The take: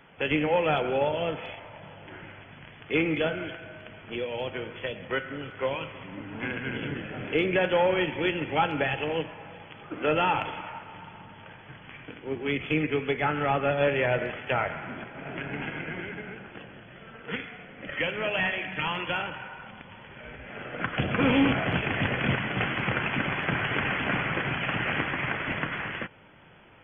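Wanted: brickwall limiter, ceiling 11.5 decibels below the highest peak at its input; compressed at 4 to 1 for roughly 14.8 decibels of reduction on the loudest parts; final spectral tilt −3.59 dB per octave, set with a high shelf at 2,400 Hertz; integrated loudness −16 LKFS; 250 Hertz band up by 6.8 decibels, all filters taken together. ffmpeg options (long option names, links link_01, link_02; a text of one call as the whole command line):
ffmpeg -i in.wav -af "equalizer=frequency=250:width_type=o:gain=8.5,highshelf=frequency=2400:gain=6,acompressor=threshold=-30dB:ratio=4,volume=20.5dB,alimiter=limit=-6.5dB:level=0:latency=1" out.wav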